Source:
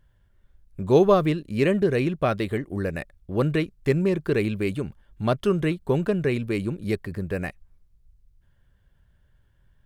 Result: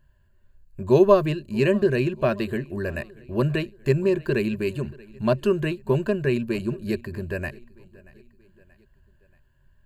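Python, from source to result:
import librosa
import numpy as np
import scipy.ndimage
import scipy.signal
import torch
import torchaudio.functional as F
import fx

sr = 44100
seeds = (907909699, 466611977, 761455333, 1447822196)

p1 = fx.ripple_eq(x, sr, per_octave=1.4, db=11)
p2 = p1 + fx.echo_feedback(p1, sr, ms=631, feedback_pct=51, wet_db=-23.0, dry=0)
y = p2 * librosa.db_to_amplitude(-1.5)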